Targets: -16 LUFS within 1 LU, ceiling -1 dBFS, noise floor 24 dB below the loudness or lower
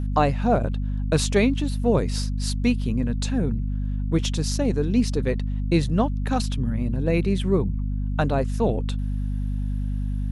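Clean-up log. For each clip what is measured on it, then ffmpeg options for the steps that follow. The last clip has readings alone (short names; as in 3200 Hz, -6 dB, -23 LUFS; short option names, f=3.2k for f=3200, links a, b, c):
hum 50 Hz; harmonics up to 250 Hz; hum level -23 dBFS; loudness -24.5 LUFS; peak -6.5 dBFS; loudness target -16.0 LUFS
-> -af "bandreject=f=50:t=h:w=6,bandreject=f=100:t=h:w=6,bandreject=f=150:t=h:w=6,bandreject=f=200:t=h:w=6,bandreject=f=250:t=h:w=6"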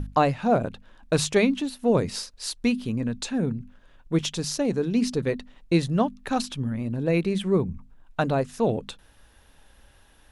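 hum none; loudness -26.0 LUFS; peak -7.5 dBFS; loudness target -16.0 LUFS
-> -af "volume=10dB,alimiter=limit=-1dB:level=0:latency=1"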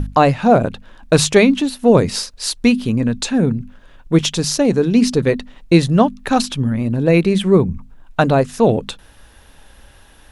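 loudness -16.0 LUFS; peak -1.0 dBFS; noise floor -46 dBFS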